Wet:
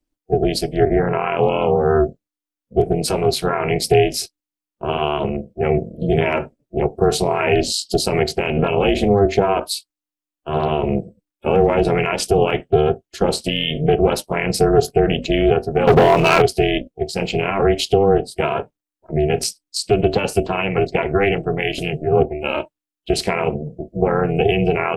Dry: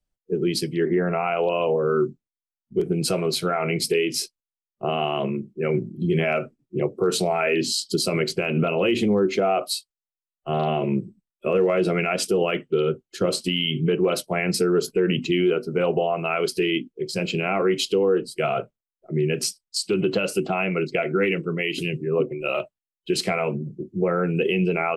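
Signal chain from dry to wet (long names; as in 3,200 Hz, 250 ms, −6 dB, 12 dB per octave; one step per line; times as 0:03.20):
dynamic equaliser 420 Hz, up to +7 dB, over −37 dBFS, Q 5.3
0:15.87–0:16.42: leveller curve on the samples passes 3
amplitude modulation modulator 300 Hz, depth 80%
level +6.5 dB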